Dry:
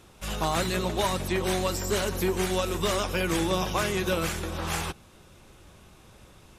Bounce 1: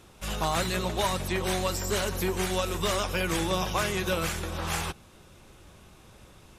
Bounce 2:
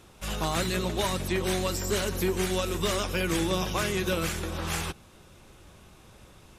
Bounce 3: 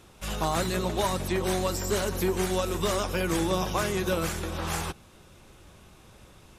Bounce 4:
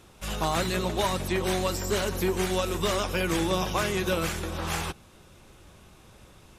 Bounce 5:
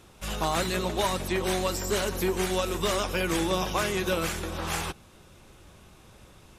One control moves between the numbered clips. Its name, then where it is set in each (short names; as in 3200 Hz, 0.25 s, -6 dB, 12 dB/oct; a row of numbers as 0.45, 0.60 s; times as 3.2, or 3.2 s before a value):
dynamic EQ, frequency: 300, 820, 2700, 9700, 110 Hz